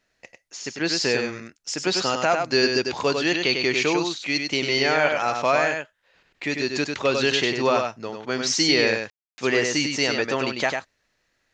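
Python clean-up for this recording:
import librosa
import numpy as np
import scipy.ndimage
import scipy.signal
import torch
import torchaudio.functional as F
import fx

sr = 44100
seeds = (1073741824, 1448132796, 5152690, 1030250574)

y = fx.fix_ambience(x, sr, seeds[0], print_start_s=10.89, print_end_s=11.39, start_s=9.1, end_s=9.38)
y = fx.fix_echo_inverse(y, sr, delay_ms=98, level_db=-5.0)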